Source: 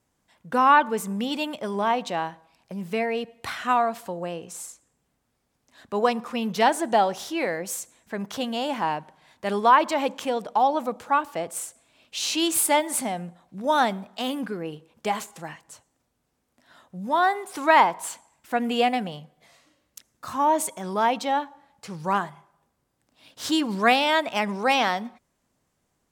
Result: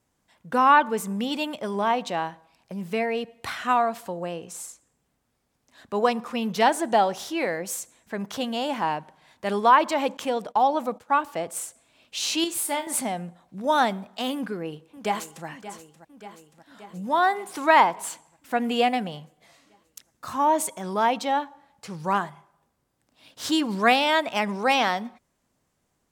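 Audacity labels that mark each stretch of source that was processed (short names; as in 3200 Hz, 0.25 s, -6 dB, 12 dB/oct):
10.170000	11.120000	gate -43 dBFS, range -16 dB
12.440000	12.870000	resonator 70 Hz, decay 0.24 s, mix 80%
14.350000	15.460000	echo throw 0.58 s, feedback 70%, level -14 dB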